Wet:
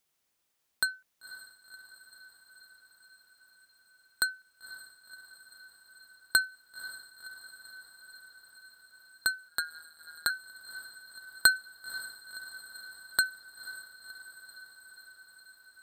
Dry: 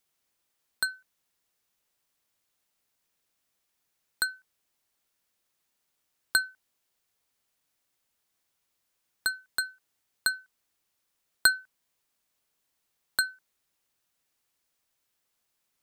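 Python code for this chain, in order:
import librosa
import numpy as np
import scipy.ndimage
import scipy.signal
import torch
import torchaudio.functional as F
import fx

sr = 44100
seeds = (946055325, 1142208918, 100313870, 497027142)

y = fx.echo_diffused(x, sr, ms=526, feedback_pct=72, wet_db=-14.5)
y = fx.ring_mod(y, sr, carrier_hz=79.0, at=(9.48, 10.3))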